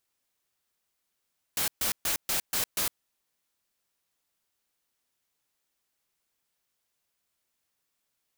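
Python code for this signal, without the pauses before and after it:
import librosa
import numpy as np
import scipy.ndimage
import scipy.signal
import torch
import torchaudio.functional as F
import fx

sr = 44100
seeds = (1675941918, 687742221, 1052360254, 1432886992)

y = fx.noise_burst(sr, seeds[0], colour='white', on_s=0.11, off_s=0.13, bursts=6, level_db=-28.0)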